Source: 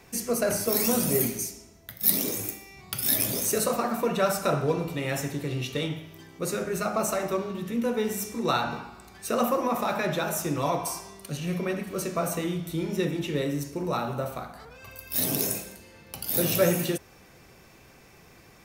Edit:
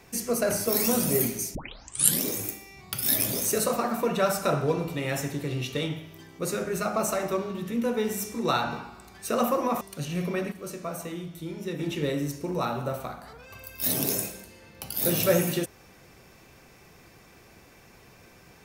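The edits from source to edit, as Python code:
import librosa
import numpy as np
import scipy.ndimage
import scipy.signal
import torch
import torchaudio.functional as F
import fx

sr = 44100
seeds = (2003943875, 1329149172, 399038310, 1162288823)

y = fx.edit(x, sr, fx.tape_start(start_s=1.55, length_s=0.68),
    fx.cut(start_s=9.81, length_s=1.32),
    fx.clip_gain(start_s=11.84, length_s=1.27, db=-6.5), tone=tone)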